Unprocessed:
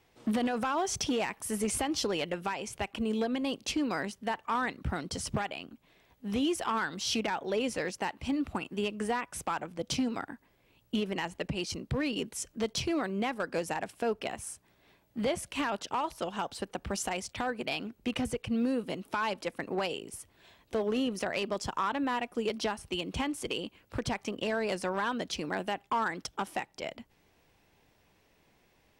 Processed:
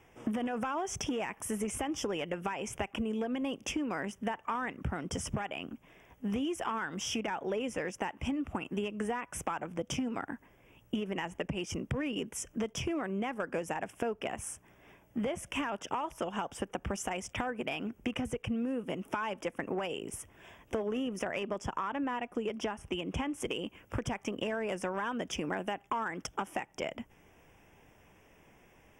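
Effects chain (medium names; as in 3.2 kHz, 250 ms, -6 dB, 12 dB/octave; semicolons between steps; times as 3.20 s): Butterworth band-stop 4.2 kHz, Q 1.9; compression, threshold -38 dBFS, peak gain reduction 11.5 dB; treble shelf 5.9 kHz -6 dB, from 21.39 s -11.5 dB, from 23.40 s -4.5 dB; trim +6.5 dB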